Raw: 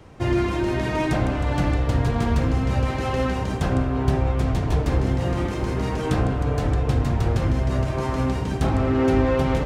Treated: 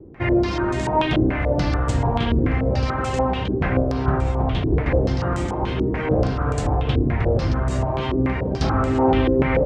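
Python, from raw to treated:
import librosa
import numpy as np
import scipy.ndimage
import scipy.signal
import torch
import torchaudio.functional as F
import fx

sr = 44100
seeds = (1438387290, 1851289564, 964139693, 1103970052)

y = fx.filter_held_lowpass(x, sr, hz=6.9, low_hz=360.0, high_hz=7800.0)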